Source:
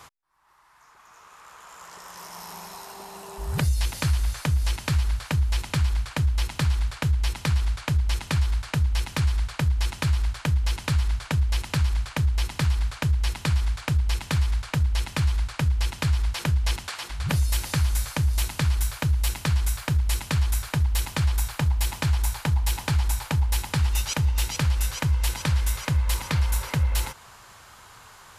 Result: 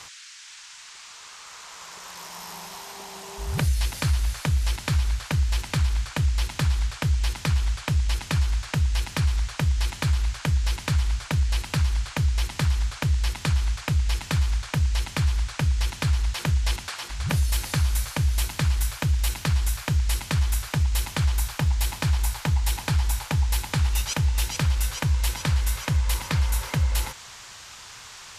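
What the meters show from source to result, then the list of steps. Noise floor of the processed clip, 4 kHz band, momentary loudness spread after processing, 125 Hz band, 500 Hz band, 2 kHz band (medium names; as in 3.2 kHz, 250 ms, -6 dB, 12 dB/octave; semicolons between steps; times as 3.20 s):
-44 dBFS, +1.0 dB, 14 LU, 0.0 dB, 0.0 dB, +0.5 dB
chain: wow and flutter 17 cents; band noise 1.4–7.6 kHz -45 dBFS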